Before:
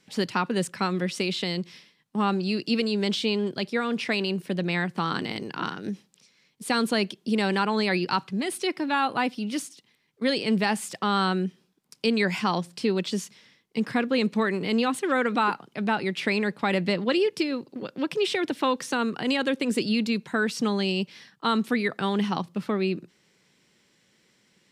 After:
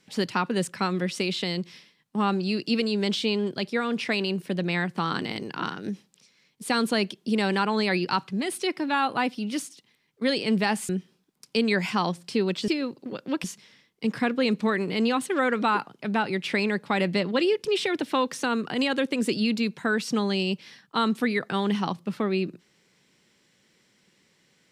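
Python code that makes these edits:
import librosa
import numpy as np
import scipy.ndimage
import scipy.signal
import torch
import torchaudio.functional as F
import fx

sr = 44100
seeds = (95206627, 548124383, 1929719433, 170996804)

y = fx.edit(x, sr, fx.cut(start_s=10.89, length_s=0.49),
    fx.move(start_s=17.38, length_s=0.76, to_s=13.17), tone=tone)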